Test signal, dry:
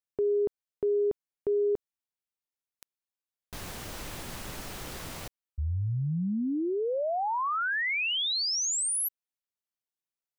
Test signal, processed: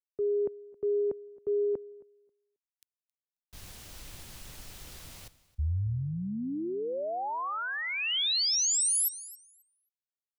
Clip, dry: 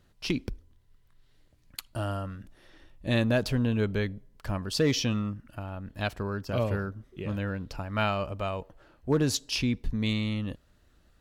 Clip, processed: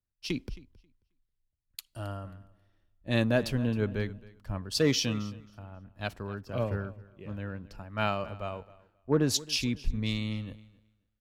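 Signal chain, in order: on a send: feedback delay 269 ms, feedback 36%, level -15.5 dB; on the sum: three bands expanded up and down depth 70%; trim -4 dB

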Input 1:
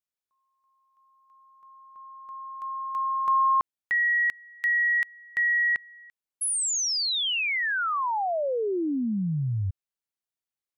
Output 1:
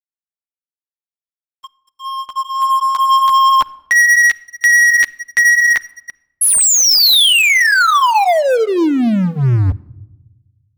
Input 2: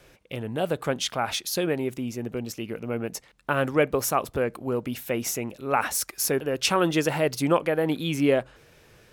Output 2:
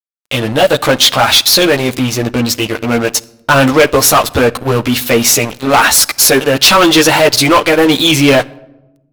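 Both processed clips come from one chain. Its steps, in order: fifteen-band graphic EQ 160 Hz -9 dB, 400 Hz -6 dB, 4 kHz +9 dB; chorus voices 6, 0.39 Hz, delay 12 ms, depth 3.5 ms; waveshaping leveller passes 5; crossover distortion -38 dBFS; simulated room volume 3800 m³, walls furnished, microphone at 0.39 m; trim +6.5 dB

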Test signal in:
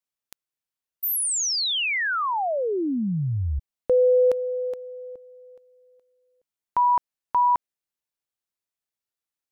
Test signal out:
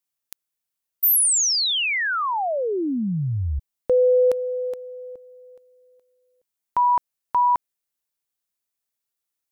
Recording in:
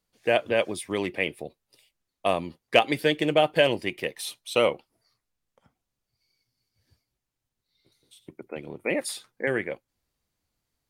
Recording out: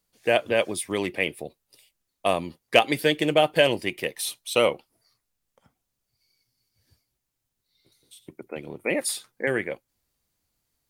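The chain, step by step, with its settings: treble shelf 6.8 kHz +8 dB; trim +1 dB

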